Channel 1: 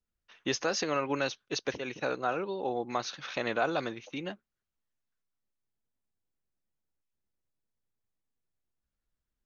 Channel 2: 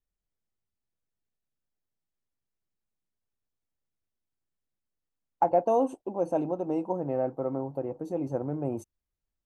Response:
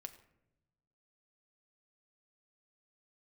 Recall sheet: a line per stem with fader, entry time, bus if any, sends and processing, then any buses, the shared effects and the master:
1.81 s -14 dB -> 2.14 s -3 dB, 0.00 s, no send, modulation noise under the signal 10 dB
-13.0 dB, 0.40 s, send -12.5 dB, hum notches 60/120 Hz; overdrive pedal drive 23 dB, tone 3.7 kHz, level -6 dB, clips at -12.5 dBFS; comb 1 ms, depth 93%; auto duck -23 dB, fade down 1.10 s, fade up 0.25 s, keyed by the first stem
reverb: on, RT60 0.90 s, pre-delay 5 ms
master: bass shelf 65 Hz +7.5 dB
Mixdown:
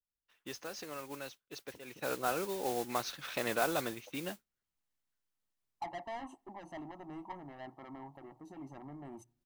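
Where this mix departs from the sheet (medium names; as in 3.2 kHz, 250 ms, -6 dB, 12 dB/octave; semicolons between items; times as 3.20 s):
stem 2 -13.0 dB -> -24.0 dB; master: missing bass shelf 65 Hz +7.5 dB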